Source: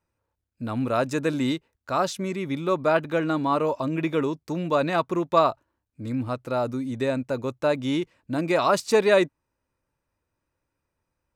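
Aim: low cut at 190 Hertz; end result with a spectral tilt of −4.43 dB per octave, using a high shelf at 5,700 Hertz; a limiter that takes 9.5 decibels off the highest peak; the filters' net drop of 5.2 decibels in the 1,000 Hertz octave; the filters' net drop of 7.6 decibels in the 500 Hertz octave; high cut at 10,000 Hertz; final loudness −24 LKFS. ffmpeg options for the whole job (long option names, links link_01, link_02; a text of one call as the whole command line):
ffmpeg -i in.wav -af "highpass=190,lowpass=10000,equalizer=frequency=500:width_type=o:gain=-8.5,equalizer=frequency=1000:width_type=o:gain=-4,highshelf=frequency=5700:gain=-7,volume=8.5dB,alimiter=limit=-11.5dB:level=0:latency=1" out.wav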